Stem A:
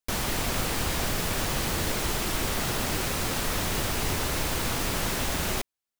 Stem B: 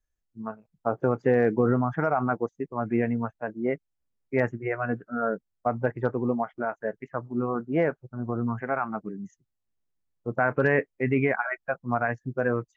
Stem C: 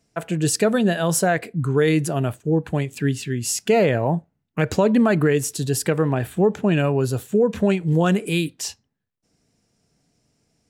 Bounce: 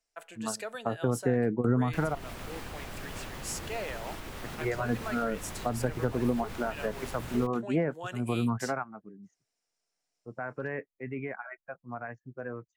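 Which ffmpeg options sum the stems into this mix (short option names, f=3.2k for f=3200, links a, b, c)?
-filter_complex "[0:a]acrossover=split=3200[a][b];[b]acompressor=threshold=-38dB:ratio=4:attack=1:release=60[c];[a][c]amix=inputs=2:normalize=0,alimiter=limit=-22dB:level=0:latency=1:release=213,adelay=1850,volume=-8.5dB[d];[1:a]volume=0dB,asplit=3[e][f][g];[e]atrim=end=2.15,asetpts=PTS-STARTPTS,afade=t=out:st=2.146:d=0.004:c=hsin[h];[f]atrim=start=2.15:end=4.44,asetpts=PTS-STARTPTS,volume=0[i];[g]atrim=start=4.44,asetpts=PTS-STARTPTS,afade=t=in:d=0.004:c=hsin[j];[h][i][j]concat=n=3:v=0:a=1[k];[2:a]highpass=730,volume=-13dB,asplit=2[l][m];[m]apad=whole_len=563091[n];[k][n]sidechaingate=range=-13dB:threshold=-58dB:ratio=16:detection=peak[o];[d][o][l]amix=inputs=3:normalize=0,acrossover=split=280[p][q];[q]acompressor=threshold=-29dB:ratio=6[r];[p][r]amix=inputs=2:normalize=0"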